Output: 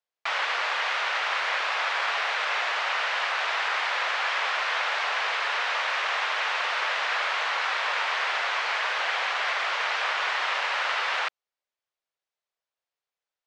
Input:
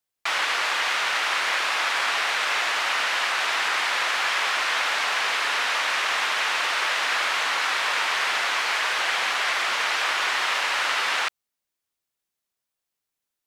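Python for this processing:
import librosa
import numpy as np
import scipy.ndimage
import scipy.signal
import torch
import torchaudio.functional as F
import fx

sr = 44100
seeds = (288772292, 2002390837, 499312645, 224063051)

y = scipy.ndimage.gaussian_filter1d(x, 1.5, mode='constant')
y = fx.low_shelf_res(y, sr, hz=370.0, db=-10.0, q=1.5)
y = F.gain(torch.from_numpy(y), -2.5).numpy()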